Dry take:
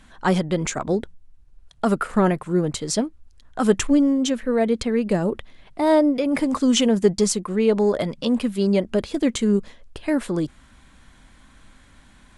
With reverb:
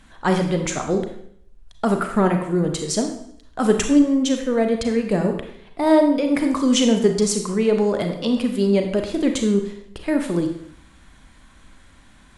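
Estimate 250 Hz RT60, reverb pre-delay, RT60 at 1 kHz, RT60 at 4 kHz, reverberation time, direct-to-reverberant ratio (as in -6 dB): 0.70 s, 32 ms, 0.65 s, 0.65 s, 0.65 s, 4.5 dB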